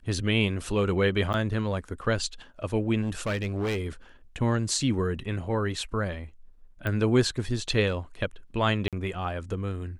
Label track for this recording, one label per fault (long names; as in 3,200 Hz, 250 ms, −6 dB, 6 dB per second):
1.330000	1.340000	drop-out 9.7 ms
3.010000	3.870000	clipping −24.5 dBFS
6.870000	6.870000	click −18 dBFS
8.880000	8.930000	drop-out 47 ms